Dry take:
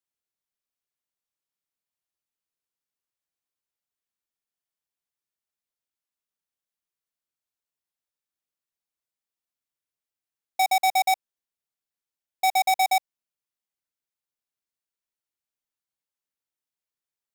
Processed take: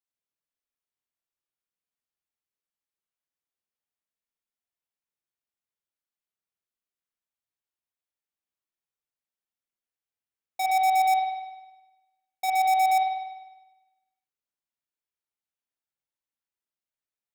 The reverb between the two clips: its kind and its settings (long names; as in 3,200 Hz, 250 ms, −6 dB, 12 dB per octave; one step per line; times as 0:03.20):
spring reverb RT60 1.1 s, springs 50 ms, chirp 75 ms, DRR −2 dB
level −7 dB